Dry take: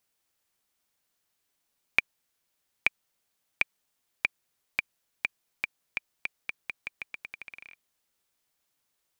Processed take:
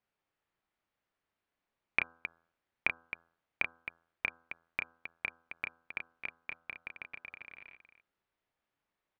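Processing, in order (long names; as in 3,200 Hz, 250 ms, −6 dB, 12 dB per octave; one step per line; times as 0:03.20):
low-pass filter 2,100 Hz 12 dB per octave
hum removal 83.4 Hz, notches 20
on a send: loudspeakers that aren't time-aligned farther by 11 metres −6 dB, 91 metres −10 dB
on the sum: level −2 dB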